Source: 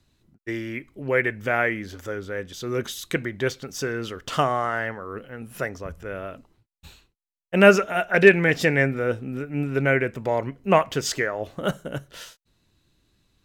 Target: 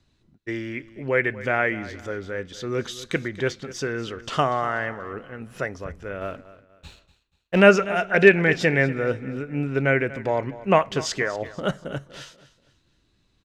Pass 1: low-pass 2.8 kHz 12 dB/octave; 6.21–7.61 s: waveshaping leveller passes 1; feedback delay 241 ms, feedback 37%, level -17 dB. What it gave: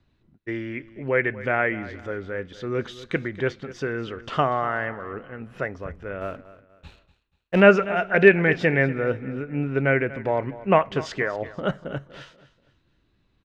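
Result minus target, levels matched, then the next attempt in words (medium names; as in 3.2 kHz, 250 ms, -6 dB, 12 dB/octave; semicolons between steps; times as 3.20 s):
8 kHz band -12.5 dB
low-pass 6.8 kHz 12 dB/octave; 6.21–7.61 s: waveshaping leveller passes 1; feedback delay 241 ms, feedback 37%, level -17 dB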